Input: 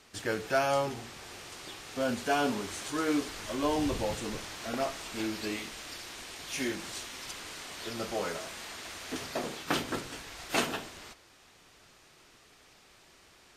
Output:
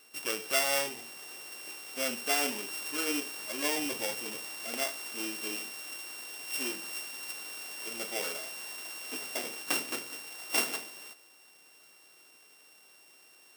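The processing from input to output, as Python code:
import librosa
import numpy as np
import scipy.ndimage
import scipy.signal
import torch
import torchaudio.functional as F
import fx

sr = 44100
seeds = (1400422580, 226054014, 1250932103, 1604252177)

y = np.r_[np.sort(x[:len(x) // 16 * 16].reshape(-1, 16), axis=1).ravel(), x[len(x) // 16 * 16:]]
y = scipy.signal.sosfilt(scipy.signal.butter(2, 280.0, 'highpass', fs=sr, output='sos'), y)
y = fx.high_shelf(y, sr, hz=3200.0, db=9.0)
y = F.gain(torch.from_numpy(y), -4.0).numpy()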